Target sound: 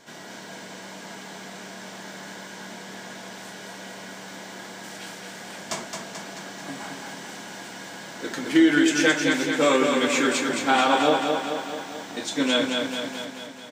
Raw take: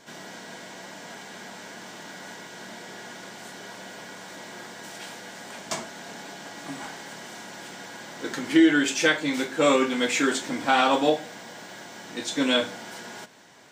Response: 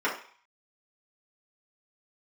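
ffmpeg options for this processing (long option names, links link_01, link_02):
-af "aecho=1:1:218|436|654|872|1090|1308|1526|1744|1962:0.596|0.357|0.214|0.129|0.0772|0.0463|0.0278|0.0167|0.01"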